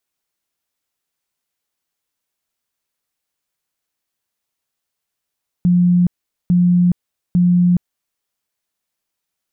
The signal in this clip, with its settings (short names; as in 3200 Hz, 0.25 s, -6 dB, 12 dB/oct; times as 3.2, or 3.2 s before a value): tone bursts 177 Hz, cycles 74, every 0.85 s, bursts 3, -9.5 dBFS